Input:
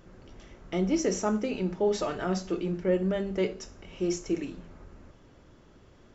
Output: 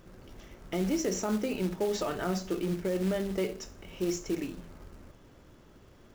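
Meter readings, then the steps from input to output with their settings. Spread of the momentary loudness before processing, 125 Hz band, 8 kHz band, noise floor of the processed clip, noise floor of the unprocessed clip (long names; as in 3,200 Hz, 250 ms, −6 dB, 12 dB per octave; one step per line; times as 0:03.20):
8 LU, −1.5 dB, can't be measured, −56 dBFS, −56 dBFS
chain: floating-point word with a short mantissa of 2 bits
brickwall limiter −22 dBFS, peak gain reduction 7.5 dB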